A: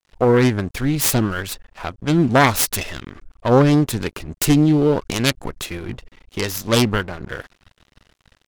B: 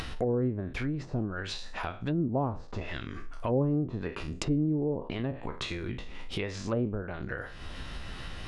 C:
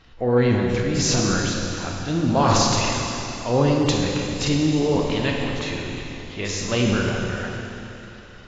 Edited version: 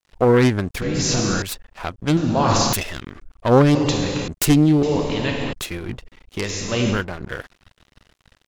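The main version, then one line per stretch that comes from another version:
A
0.82–1.42 from C
2.17–2.73 from C
3.75–4.28 from C
4.83–5.53 from C
6.43–6.97 from C, crossfade 0.16 s
not used: B

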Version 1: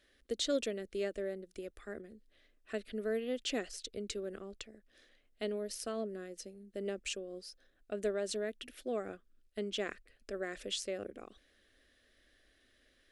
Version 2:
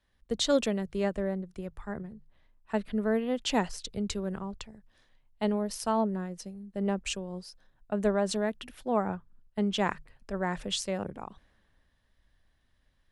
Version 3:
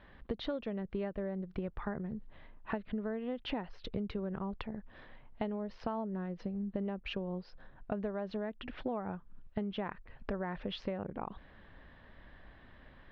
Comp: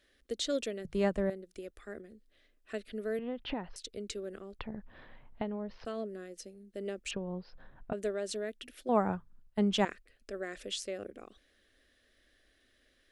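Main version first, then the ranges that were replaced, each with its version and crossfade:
1
0.85–1.3 from 2
3.19–3.76 from 3
4.59–5.85 from 3
7.11–7.93 from 3
8.89–9.85 from 2

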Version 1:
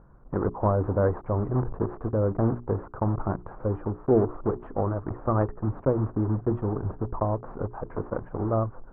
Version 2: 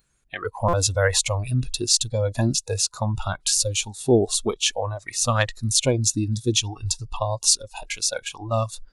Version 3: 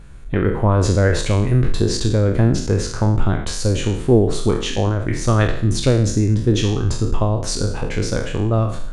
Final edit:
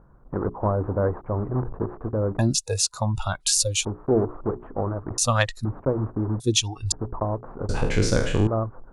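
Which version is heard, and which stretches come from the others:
1
2.39–3.85 from 2
5.18–5.65 from 2
6.4–6.92 from 2
7.69–8.47 from 3

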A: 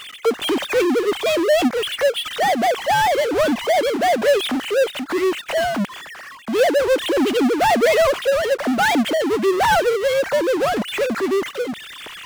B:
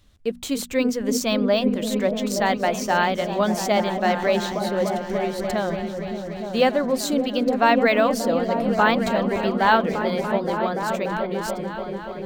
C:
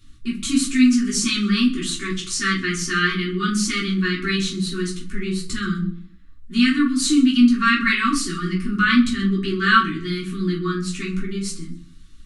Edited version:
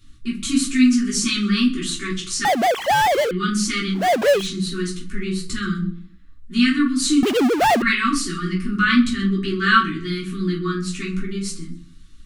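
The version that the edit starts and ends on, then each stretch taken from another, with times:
C
2.45–3.31 from A
4.01–4.42 from A, crossfade 0.16 s
7.23–7.82 from A
not used: B

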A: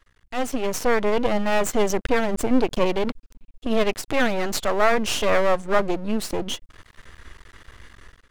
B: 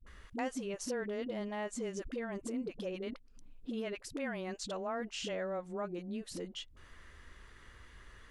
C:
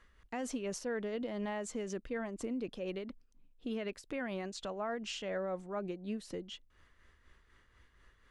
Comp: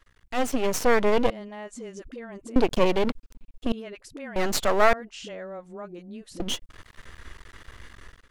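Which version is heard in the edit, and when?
A
1.3–2.56 from B
3.72–4.36 from B
4.93–6.4 from B
not used: C

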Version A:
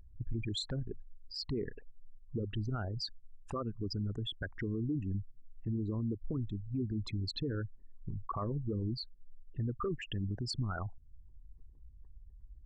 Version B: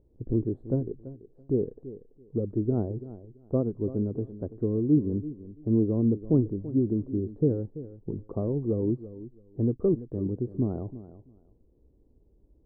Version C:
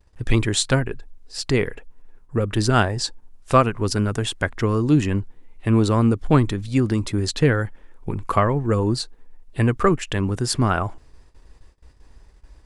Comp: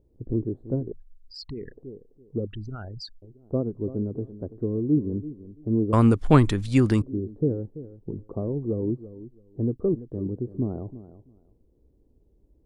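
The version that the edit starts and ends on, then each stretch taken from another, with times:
B
0.92–1.72 from A
2.47–3.22 from A
5.93–7.02 from C

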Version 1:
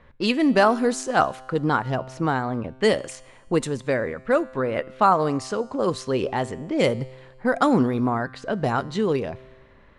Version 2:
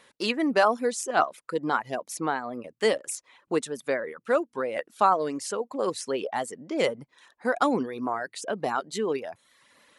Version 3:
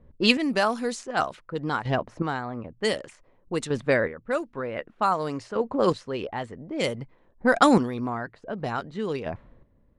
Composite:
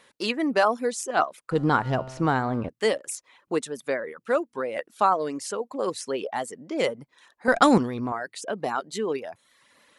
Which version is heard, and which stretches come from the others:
2
1.51–2.69 from 1
7.48–8.12 from 3

